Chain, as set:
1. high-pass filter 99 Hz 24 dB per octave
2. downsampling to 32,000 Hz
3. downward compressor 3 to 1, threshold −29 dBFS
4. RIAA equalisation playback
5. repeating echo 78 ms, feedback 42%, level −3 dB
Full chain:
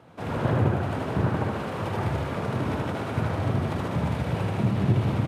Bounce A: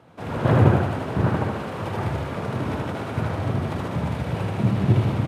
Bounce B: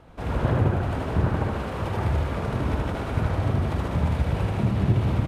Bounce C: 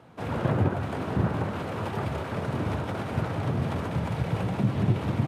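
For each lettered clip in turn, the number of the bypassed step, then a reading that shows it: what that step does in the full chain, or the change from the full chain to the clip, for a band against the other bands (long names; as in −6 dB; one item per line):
3, change in momentary loudness spread +5 LU
1, 125 Hz band +2.0 dB
5, echo-to-direct ratio −2.0 dB to none audible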